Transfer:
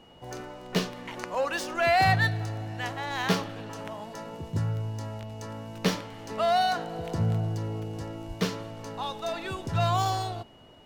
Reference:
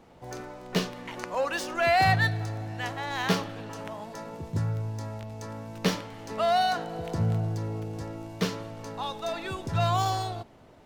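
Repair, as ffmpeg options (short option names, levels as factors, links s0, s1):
-filter_complex "[0:a]bandreject=f=2900:w=30,asplit=3[s0][s1][s2];[s0]afade=t=out:st=8.27:d=0.02[s3];[s1]highpass=f=140:w=0.5412,highpass=f=140:w=1.3066,afade=t=in:st=8.27:d=0.02,afade=t=out:st=8.39:d=0.02[s4];[s2]afade=t=in:st=8.39:d=0.02[s5];[s3][s4][s5]amix=inputs=3:normalize=0"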